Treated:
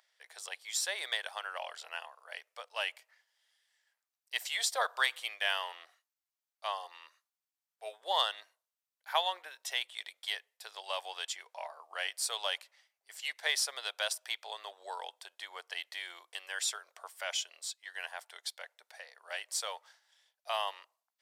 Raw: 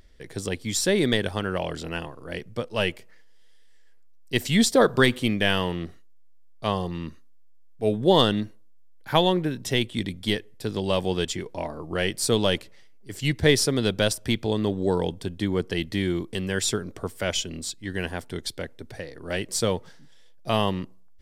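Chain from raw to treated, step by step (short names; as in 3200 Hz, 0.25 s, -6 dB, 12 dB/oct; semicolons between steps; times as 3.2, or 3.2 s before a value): steep high-pass 680 Hz 36 dB/oct; gain -7 dB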